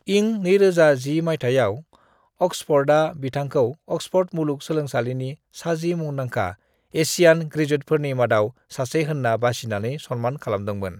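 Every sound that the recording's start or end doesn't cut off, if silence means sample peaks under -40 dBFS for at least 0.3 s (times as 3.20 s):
2.41–6.54 s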